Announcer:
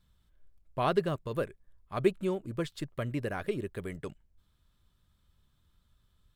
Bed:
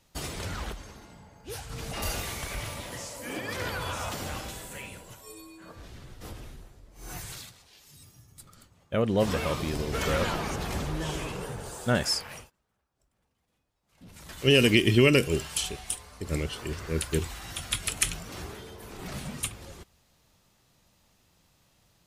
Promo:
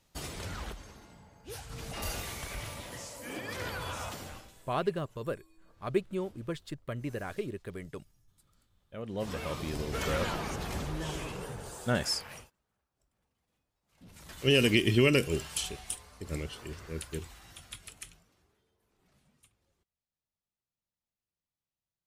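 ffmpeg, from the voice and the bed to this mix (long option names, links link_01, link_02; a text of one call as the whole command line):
ffmpeg -i stem1.wav -i stem2.wav -filter_complex "[0:a]adelay=3900,volume=-3dB[link_01];[1:a]volume=9.5dB,afade=type=out:start_time=4.02:duration=0.48:silence=0.211349,afade=type=in:start_time=8.91:duration=0.89:silence=0.199526,afade=type=out:start_time=15.73:duration=2.63:silence=0.0398107[link_02];[link_01][link_02]amix=inputs=2:normalize=0" out.wav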